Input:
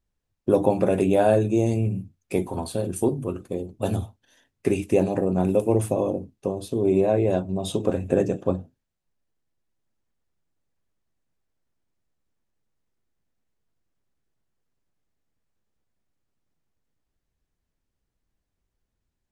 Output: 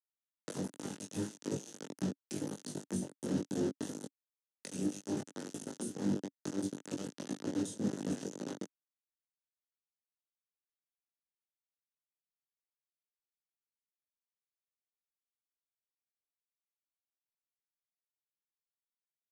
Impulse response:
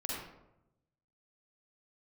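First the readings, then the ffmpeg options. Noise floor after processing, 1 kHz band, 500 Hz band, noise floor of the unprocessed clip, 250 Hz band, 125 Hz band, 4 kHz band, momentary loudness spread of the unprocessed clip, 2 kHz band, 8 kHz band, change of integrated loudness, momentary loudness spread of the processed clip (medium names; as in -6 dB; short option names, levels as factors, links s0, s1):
under -85 dBFS, -20.5 dB, -21.5 dB, -81 dBFS, -12.0 dB, -17.0 dB, -7.5 dB, 11 LU, -13.5 dB, -4.5 dB, -15.5 dB, 9 LU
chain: -filter_complex "[0:a]bandreject=f=60:t=h:w=6,bandreject=f=120:t=h:w=6,bandreject=f=180:t=h:w=6,bandreject=f=240:t=h:w=6,bandreject=f=300:t=h:w=6,bandreject=f=360:t=h:w=6,bandreject=f=420:t=h:w=6,afftfilt=real='re*lt(hypot(re,im),0.178)':imag='im*lt(hypot(re,im),0.178)':win_size=1024:overlap=0.75,acrossover=split=6000[s0][s1];[s0]acompressor=threshold=0.00562:ratio=8[s2];[s2][s1]amix=inputs=2:normalize=0,acrossover=split=2200[s3][s4];[s3]aeval=exprs='val(0)*(1-0.5/2+0.5/2*cos(2*PI*3.3*n/s))':c=same[s5];[s4]aeval=exprs='val(0)*(1-0.5/2-0.5/2*cos(2*PI*3.3*n/s))':c=same[s6];[s5][s6]amix=inputs=2:normalize=0,flanger=delay=19:depth=3.2:speed=0.78,bass=f=250:g=12,treble=f=4000:g=1,acrusher=bits=6:mix=0:aa=0.000001,highpass=f=170:w=0.5412,highpass=f=170:w=1.3066,equalizer=f=280:t=q:w=4:g=5,equalizer=f=710:t=q:w=4:g=-6,equalizer=f=1100:t=q:w=4:g=-8,equalizer=f=2300:t=q:w=4:g=-10,equalizer=f=6200:t=q:w=4:g=8,lowpass=f=9700:w=0.5412,lowpass=f=9700:w=1.3066,acrossover=split=500[s7][s8];[s8]acompressor=threshold=0.00126:ratio=10[s9];[s7][s9]amix=inputs=2:normalize=0,asplit=2[s10][s11];[s11]adelay=20,volume=0.668[s12];[s10][s12]amix=inputs=2:normalize=0,volume=3.76"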